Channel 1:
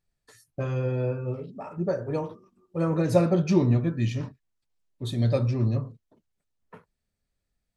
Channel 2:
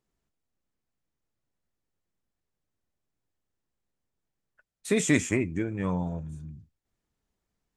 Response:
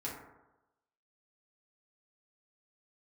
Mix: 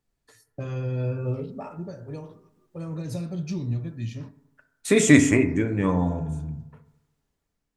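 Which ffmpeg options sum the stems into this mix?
-filter_complex "[0:a]acrossover=split=210|3000[link_01][link_02][link_03];[link_02]acompressor=threshold=-36dB:ratio=6[link_04];[link_01][link_04][link_03]amix=inputs=3:normalize=0,volume=-3.5dB,afade=type=out:start_time=1.21:duration=0.64:silence=0.223872,asplit=2[link_05][link_06];[link_06]volume=-12dB[link_07];[1:a]volume=-4.5dB,asplit=3[link_08][link_09][link_10];[link_09]volume=-5dB[link_11];[link_10]apad=whole_len=342390[link_12];[link_05][link_12]sidechaincompress=threshold=-49dB:ratio=8:attack=16:release=526[link_13];[2:a]atrim=start_sample=2205[link_14];[link_07][link_11]amix=inputs=2:normalize=0[link_15];[link_15][link_14]afir=irnorm=-1:irlink=0[link_16];[link_13][link_08][link_16]amix=inputs=3:normalize=0,dynaudnorm=framelen=460:gausssize=5:maxgain=12dB"

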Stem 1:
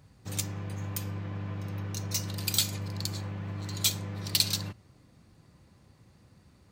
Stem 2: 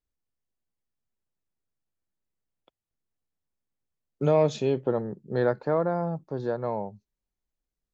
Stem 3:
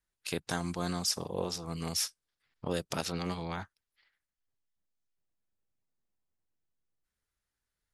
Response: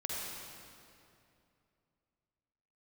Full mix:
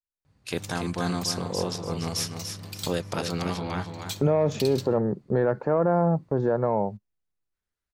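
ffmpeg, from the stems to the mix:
-filter_complex "[0:a]adelay=250,volume=-13.5dB[link_01];[1:a]equalizer=frequency=4100:width_type=o:width=0.8:gain=-14,acontrast=90,volume=-6.5dB[link_02];[2:a]adelay=200,volume=-2dB,asplit=2[link_03][link_04];[link_04]volume=-7dB[link_05];[link_02][link_03]amix=inputs=2:normalize=0,agate=range=-19dB:threshold=-42dB:ratio=16:detection=peak,alimiter=limit=-18dB:level=0:latency=1:release=105,volume=0dB[link_06];[link_05]aecho=0:1:290|580|870|1160:1|0.26|0.0676|0.0176[link_07];[link_01][link_06][link_07]amix=inputs=3:normalize=0,highshelf=frequency=6000:gain=-7,dynaudnorm=framelen=150:gausssize=3:maxgain=7.5dB,alimiter=limit=-14dB:level=0:latency=1:release=32"

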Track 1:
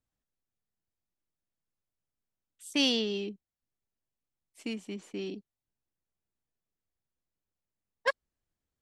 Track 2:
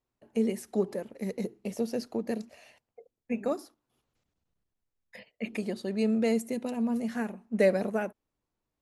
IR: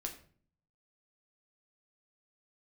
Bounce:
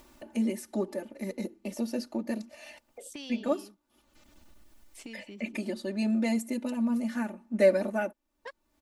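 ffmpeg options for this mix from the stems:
-filter_complex "[0:a]acompressor=threshold=-41dB:ratio=2,adelay=400,volume=-11dB[link_01];[1:a]equalizer=frequency=80:width=1.5:gain=-6,bandreject=frequency=520:width=15,aecho=1:1:3.4:0.95,volume=-2dB[link_02];[link_01][link_02]amix=inputs=2:normalize=0,acompressor=mode=upward:threshold=-35dB:ratio=2.5"

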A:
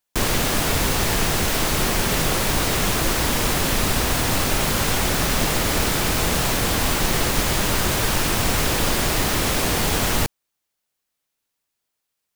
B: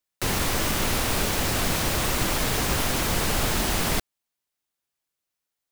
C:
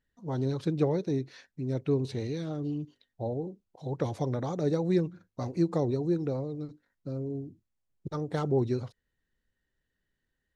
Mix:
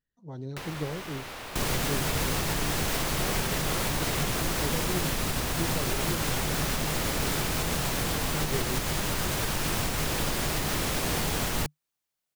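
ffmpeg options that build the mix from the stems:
ffmpeg -i stem1.wav -i stem2.wav -i stem3.wav -filter_complex "[0:a]alimiter=limit=-12dB:level=0:latency=1:release=180,adelay=1400,volume=-6dB[link_01];[1:a]acrossover=split=380|4200[link_02][link_03][link_04];[link_02]acompressor=threshold=-46dB:ratio=4[link_05];[link_03]acompressor=threshold=-35dB:ratio=4[link_06];[link_04]acompressor=threshold=-48dB:ratio=4[link_07];[link_05][link_06][link_07]amix=inputs=3:normalize=0,adelay=350,volume=-4.5dB[link_08];[2:a]volume=-9dB[link_09];[link_01][link_08][link_09]amix=inputs=3:normalize=0,equalizer=frequency=150:width_type=o:width=0.23:gain=6" out.wav

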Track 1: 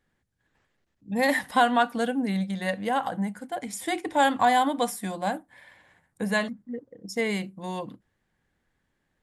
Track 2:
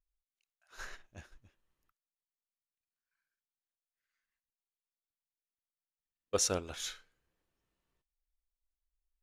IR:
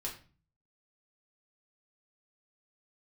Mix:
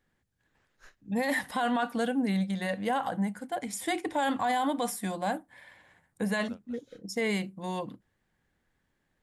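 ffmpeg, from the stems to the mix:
-filter_complex "[0:a]volume=-1dB,asplit=2[link_01][link_02];[1:a]aeval=exprs='val(0)*pow(10,-27*(0.5-0.5*cos(2*PI*4.6*n/s))/20)':channel_layout=same,volume=-5.5dB[link_03];[link_02]apad=whole_len=406782[link_04];[link_03][link_04]sidechaincompress=threshold=-30dB:ratio=6:attack=11:release=828[link_05];[link_01][link_05]amix=inputs=2:normalize=0,alimiter=limit=-20.5dB:level=0:latency=1:release=12"

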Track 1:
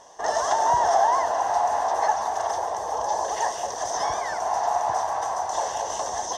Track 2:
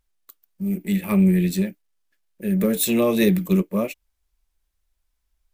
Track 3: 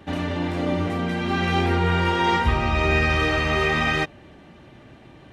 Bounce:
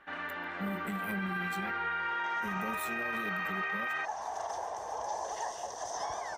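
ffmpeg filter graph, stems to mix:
ffmpeg -i stem1.wav -i stem2.wav -i stem3.wav -filter_complex "[0:a]adelay=2000,volume=-10.5dB,afade=type=in:start_time=3.83:duration=0.53:silence=0.223872[link_01];[1:a]acompressor=threshold=-24dB:ratio=6,volume=-9dB[link_02];[2:a]bandpass=frequency=1500:width_type=q:width=2.7:csg=0,volume=0.5dB[link_03];[link_01][link_02][link_03]amix=inputs=3:normalize=0,alimiter=level_in=2.5dB:limit=-24dB:level=0:latency=1:release=35,volume=-2.5dB" out.wav

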